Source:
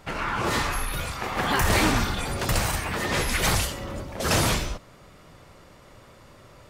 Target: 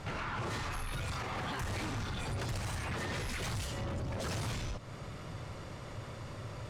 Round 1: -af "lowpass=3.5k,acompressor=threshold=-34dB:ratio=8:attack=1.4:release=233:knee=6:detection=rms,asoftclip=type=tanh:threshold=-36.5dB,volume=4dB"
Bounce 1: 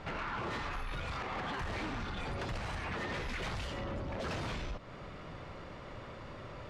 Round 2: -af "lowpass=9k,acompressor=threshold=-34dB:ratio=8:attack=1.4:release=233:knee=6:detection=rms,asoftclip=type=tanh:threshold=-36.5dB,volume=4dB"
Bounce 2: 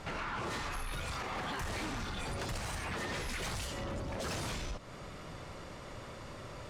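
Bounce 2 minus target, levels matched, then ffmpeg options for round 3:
125 Hz band -4.5 dB
-af "lowpass=9k,acompressor=threshold=-34dB:ratio=8:attack=1.4:release=233:knee=6:detection=rms,equalizer=f=110:w=1.6:g=9,asoftclip=type=tanh:threshold=-36.5dB,volume=4dB"

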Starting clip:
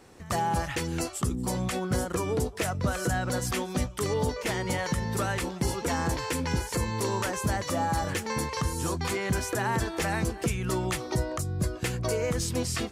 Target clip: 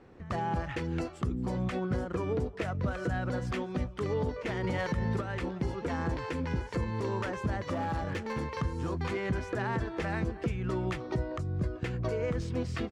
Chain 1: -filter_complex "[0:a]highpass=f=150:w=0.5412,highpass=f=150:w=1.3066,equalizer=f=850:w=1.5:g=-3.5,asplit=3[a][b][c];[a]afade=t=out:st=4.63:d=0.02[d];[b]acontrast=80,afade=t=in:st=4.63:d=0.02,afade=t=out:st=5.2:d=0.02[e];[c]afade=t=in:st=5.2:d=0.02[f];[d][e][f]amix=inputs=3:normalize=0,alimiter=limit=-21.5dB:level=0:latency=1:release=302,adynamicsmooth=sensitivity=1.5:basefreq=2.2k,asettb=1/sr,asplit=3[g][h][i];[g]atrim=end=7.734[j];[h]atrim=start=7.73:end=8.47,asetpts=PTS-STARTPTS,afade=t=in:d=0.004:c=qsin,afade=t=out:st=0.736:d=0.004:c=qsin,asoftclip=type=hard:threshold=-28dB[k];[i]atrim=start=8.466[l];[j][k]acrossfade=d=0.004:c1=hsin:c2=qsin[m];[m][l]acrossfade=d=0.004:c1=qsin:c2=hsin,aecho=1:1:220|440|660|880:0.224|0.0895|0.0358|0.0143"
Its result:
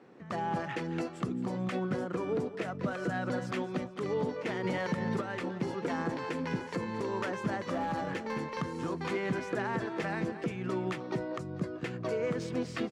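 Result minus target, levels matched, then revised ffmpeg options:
echo-to-direct +10.5 dB; 125 Hz band -5.0 dB
-filter_complex "[0:a]equalizer=f=850:w=1.5:g=-3.5,asplit=3[a][b][c];[a]afade=t=out:st=4.63:d=0.02[d];[b]acontrast=80,afade=t=in:st=4.63:d=0.02,afade=t=out:st=5.2:d=0.02[e];[c]afade=t=in:st=5.2:d=0.02[f];[d][e][f]amix=inputs=3:normalize=0,alimiter=limit=-21.5dB:level=0:latency=1:release=302,adynamicsmooth=sensitivity=1.5:basefreq=2.2k,asettb=1/sr,asplit=3[g][h][i];[g]atrim=end=7.734[j];[h]atrim=start=7.73:end=8.47,asetpts=PTS-STARTPTS,afade=t=in:d=0.004:c=qsin,afade=t=out:st=0.736:d=0.004:c=qsin,asoftclip=type=hard:threshold=-28dB[k];[i]atrim=start=8.466[l];[j][k]acrossfade=d=0.004:c1=hsin:c2=qsin[m];[m][l]acrossfade=d=0.004:c1=qsin:c2=hsin,aecho=1:1:220|440|660:0.0668|0.0267|0.0107"

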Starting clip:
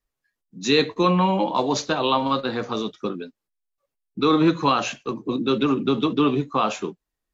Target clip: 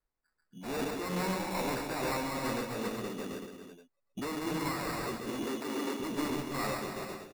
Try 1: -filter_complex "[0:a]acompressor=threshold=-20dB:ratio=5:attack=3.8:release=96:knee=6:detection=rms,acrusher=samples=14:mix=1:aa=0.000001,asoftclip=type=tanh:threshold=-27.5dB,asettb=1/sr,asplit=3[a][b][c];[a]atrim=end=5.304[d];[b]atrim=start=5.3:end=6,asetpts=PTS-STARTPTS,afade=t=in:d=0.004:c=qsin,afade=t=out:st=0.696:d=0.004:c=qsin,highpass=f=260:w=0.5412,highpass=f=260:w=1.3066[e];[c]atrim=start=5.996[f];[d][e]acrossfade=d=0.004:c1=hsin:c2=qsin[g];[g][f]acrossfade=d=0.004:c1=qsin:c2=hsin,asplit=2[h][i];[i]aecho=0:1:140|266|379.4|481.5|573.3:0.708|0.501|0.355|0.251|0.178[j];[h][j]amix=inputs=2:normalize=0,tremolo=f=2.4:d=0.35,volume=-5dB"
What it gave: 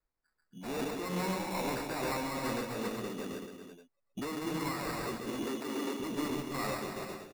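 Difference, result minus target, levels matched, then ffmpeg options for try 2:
compressor: peak gain reduction +7.5 dB
-filter_complex "[0:a]acrusher=samples=14:mix=1:aa=0.000001,asoftclip=type=tanh:threshold=-27.5dB,asettb=1/sr,asplit=3[a][b][c];[a]atrim=end=5.304[d];[b]atrim=start=5.3:end=6,asetpts=PTS-STARTPTS,afade=t=in:d=0.004:c=qsin,afade=t=out:st=0.696:d=0.004:c=qsin,highpass=f=260:w=0.5412,highpass=f=260:w=1.3066[e];[c]atrim=start=5.996[f];[d][e]acrossfade=d=0.004:c1=hsin:c2=qsin[g];[g][f]acrossfade=d=0.004:c1=qsin:c2=hsin,asplit=2[h][i];[i]aecho=0:1:140|266|379.4|481.5|573.3:0.708|0.501|0.355|0.251|0.178[j];[h][j]amix=inputs=2:normalize=0,tremolo=f=2.4:d=0.35,volume=-5dB"

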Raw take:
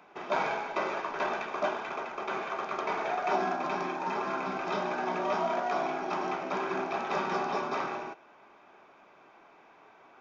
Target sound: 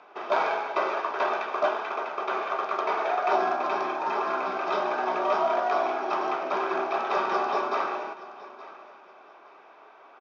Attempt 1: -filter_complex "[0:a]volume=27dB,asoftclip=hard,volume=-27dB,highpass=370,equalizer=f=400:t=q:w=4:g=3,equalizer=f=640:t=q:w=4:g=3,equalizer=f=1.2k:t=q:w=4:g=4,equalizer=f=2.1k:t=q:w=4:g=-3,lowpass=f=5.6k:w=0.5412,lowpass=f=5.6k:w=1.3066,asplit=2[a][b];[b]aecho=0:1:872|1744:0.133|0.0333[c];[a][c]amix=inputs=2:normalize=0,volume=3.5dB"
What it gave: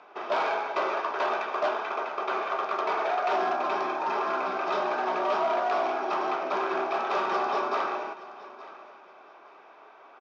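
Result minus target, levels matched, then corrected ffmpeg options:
overloaded stage: distortion +21 dB
-filter_complex "[0:a]volume=20dB,asoftclip=hard,volume=-20dB,highpass=370,equalizer=f=400:t=q:w=4:g=3,equalizer=f=640:t=q:w=4:g=3,equalizer=f=1.2k:t=q:w=4:g=4,equalizer=f=2.1k:t=q:w=4:g=-3,lowpass=f=5.6k:w=0.5412,lowpass=f=5.6k:w=1.3066,asplit=2[a][b];[b]aecho=0:1:872|1744:0.133|0.0333[c];[a][c]amix=inputs=2:normalize=0,volume=3.5dB"

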